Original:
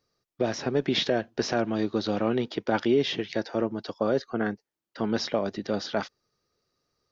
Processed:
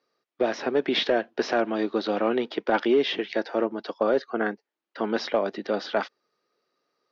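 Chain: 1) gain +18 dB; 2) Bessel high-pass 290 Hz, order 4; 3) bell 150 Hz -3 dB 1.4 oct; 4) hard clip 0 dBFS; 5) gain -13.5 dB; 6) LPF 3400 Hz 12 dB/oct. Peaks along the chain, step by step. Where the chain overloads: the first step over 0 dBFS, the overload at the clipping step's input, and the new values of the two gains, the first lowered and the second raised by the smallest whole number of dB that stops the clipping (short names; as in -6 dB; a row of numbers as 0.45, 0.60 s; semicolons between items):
+7.0, +4.0, +4.0, 0.0, -13.5, -13.0 dBFS; step 1, 4.0 dB; step 1 +14 dB, step 5 -9.5 dB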